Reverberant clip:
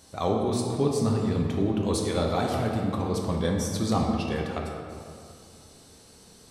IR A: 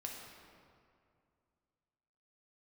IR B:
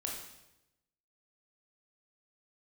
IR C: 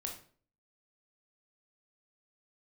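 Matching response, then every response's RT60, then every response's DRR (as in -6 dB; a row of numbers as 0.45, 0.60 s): A; 2.3, 0.90, 0.45 s; -1.0, -1.5, 1.0 dB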